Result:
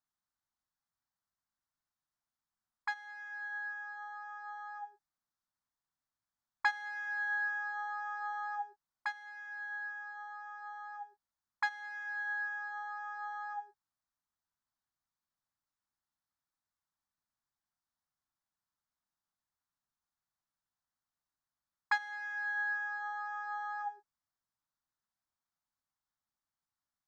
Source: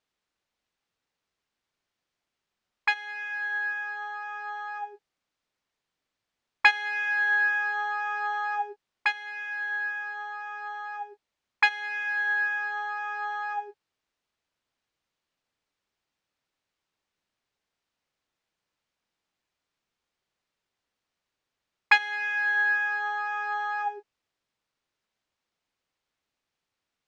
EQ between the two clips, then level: static phaser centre 1.1 kHz, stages 4; -7.5 dB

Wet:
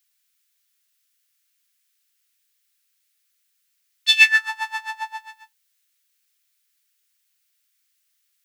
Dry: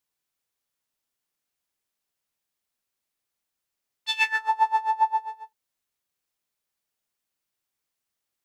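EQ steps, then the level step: high-pass 1.4 kHz 24 dB/octave; tilt EQ +4.5 dB/octave; treble shelf 4.8 kHz -11.5 dB; +7.5 dB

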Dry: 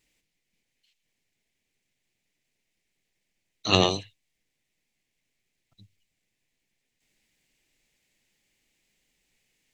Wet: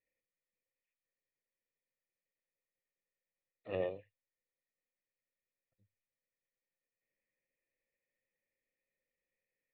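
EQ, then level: cascade formant filter e; peaking EQ 100 Hz +3 dB; -3.5 dB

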